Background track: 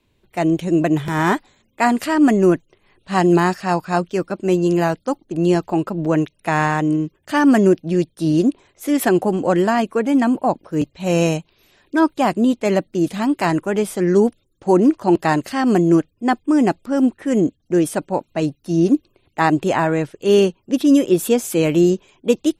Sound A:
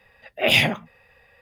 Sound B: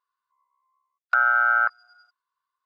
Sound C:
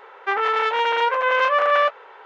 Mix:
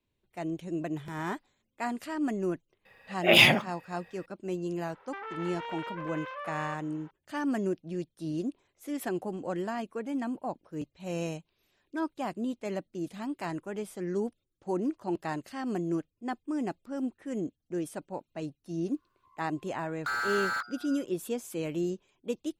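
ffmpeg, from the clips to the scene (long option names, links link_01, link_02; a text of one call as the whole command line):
ffmpeg -i bed.wav -i cue0.wav -i cue1.wav -i cue2.wav -filter_complex "[0:a]volume=-17dB[link_01];[1:a]highpass=130[link_02];[3:a]acompressor=threshold=-21dB:ratio=6:attack=3.2:release=140:knee=1:detection=peak[link_03];[2:a]asplit=2[link_04][link_05];[link_05]highpass=frequency=720:poles=1,volume=33dB,asoftclip=type=tanh:threshold=-8.5dB[link_06];[link_04][link_06]amix=inputs=2:normalize=0,lowpass=frequency=3600:poles=1,volume=-6dB[link_07];[link_02]atrim=end=1.41,asetpts=PTS-STARTPTS,volume=-1dB,afade=type=in:duration=0.004:curve=hsin,afade=type=out:start_time=1.406:duration=0.004:curve=hsin,adelay=2850[link_08];[link_03]atrim=end=2.25,asetpts=PTS-STARTPTS,volume=-14.5dB,afade=type=in:duration=0.004:curve=hsin,afade=type=out:start_time=2.246:duration=0.004:curve=hsin,adelay=4860[link_09];[link_07]atrim=end=2.65,asetpts=PTS-STARTPTS,volume=-17dB,afade=type=in:duration=0.004:curve=hsin,afade=type=out:start_time=2.646:duration=0.004:curve=hsin,adelay=18930[link_10];[link_01][link_08][link_09][link_10]amix=inputs=4:normalize=0" out.wav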